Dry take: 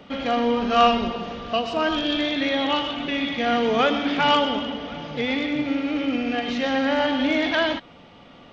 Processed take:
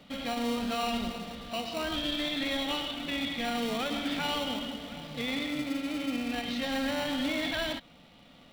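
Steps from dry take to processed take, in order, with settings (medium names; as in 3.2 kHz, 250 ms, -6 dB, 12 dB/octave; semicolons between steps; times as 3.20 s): in parallel at -6 dB: sample-and-hold 27×; on the sum: fifteen-band graphic EQ 100 Hz -6 dB, 400 Hz -9 dB, 1 kHz -4 dB, 4 kHz +6 dB; peak limiter -13 dBFS, peak gain reduction 8 dB; trim -8.5 dB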